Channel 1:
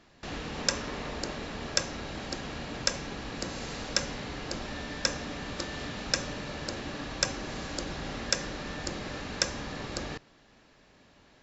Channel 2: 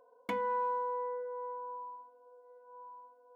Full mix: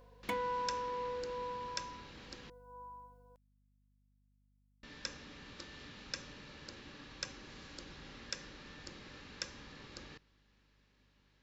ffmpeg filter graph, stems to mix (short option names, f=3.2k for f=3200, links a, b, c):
-filter_complex "[0:a]lowpass=4.4k,equalizer=f=680:t=o:w=0.31:g=-11,volume=-15.5dB,asplit=3[a][b][c];[a]atrim=end=2.5,asetpts=PTS-STARTPTS,afade=t=out:st=2.496:d=0.004:c=hsin[d];[b]atrim=start=2.5:end=4.83,asetpts=PTS-STARTPTS,volume=0[e];[c]atrim=start=4.83,asetpts=PTS-STARTPTS,afade=t=in:d=0.004:c=hsin[f];[d][e][f]concat=n=3:v=0:a=1[g];[1:a]aeval=exprs='val(0)+0.000794*(sin(2*PI*50*n/s)+sin(2*PI*2*50*n/s)/2+sin(2*PI*3*50*n/s)/3+sin(2*PI*4*50*n/s)/4+sin(2*PI*5*50*n/s)/5)':c=same,tremolo=f=0.71:d=0.41,volume=-1dB[h];[g][h]amix=inputs=2:normalize=0,highshelf=f=3k:g=9.5,aeval=exprs='val(0)+0.000251*(sin(2*PI*50*n/s)+sin(2*PI*2*50*n/s)/2+sin(2*PI*3*50*n/s)/3+sin(2*PI*4*50*n/s)/4+sin(2*PI*5*50*n/s)/5)':c=same"